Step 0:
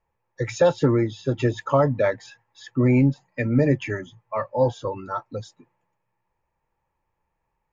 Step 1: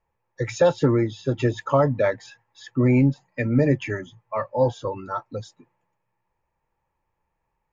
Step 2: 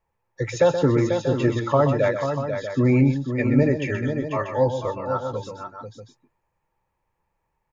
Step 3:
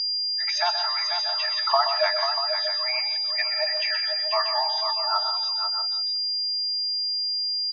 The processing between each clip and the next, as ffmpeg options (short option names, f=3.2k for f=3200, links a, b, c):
-af anull
-af "aecho=1:1:126|491|638:0.355|0.422|0.282"
-filter_complex "[0:a]aeval=exprs='val(0)+0.0501*sin(2*PI*4800*n/s)':c=same,asplit=2[a][b];[b]adelay=170,highpass=300,lowpass=3.4k,asoftclip=type=hard:threshold=-15dB,volume=-12dB[c];[a][c]amix=inputs=2:normalize=0,afftfilt=real='re*between(b*sr/4096,610,6500)':imag='im*between(b*sr/4096,610,6500)':win_size=4096:overlap=0.75,volume=2.5dB"